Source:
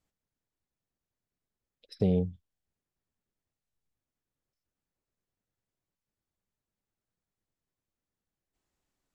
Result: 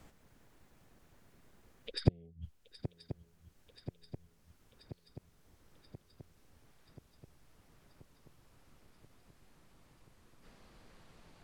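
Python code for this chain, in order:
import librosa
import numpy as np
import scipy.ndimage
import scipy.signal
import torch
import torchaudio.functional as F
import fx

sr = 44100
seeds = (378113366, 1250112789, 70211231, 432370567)

p1 = fx.speed_glide(x, sr, from_pct=101, to_pct=59)
p2 = fx.low_shelf(p1, sr, hz=67.0, db=7.0)
p3 = fx.gate_flip(p2, sr, shuts_db=-20.0, range_db=-40)
p4 = p3 + fx.echo_swing(p3, sr, ms=1032, ratio=3, feedback_pct=51, wet_db=-18.0, dry=0)
p5 = fx.band_squash(p4, sr, depth_pct=40)
y = p5 * 10.0 ** (15.5 / 20.0)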